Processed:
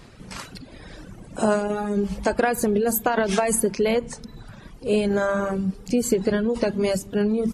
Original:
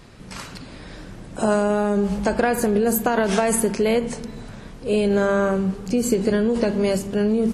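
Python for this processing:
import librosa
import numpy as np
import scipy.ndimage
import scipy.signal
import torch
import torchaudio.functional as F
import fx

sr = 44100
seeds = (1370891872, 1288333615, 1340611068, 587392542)

y = fx.dereverb_blind(x, sr, rt60_s=1.3)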